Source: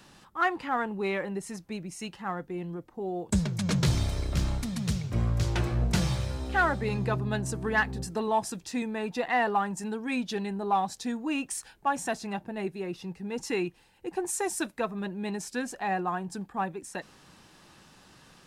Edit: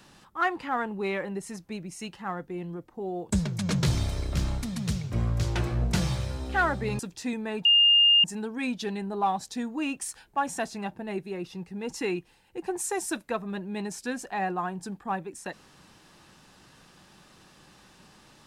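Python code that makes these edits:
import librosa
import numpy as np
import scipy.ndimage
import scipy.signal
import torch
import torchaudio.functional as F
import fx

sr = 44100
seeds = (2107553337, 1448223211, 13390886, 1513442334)

y = fx.edit(x, sr, fx.cut(start_s=6.99, length_s=1.49),
    fx.bleep(start_s=9.14, length_s=0.59, hz=2820.0, db=-15.5), tone=tone)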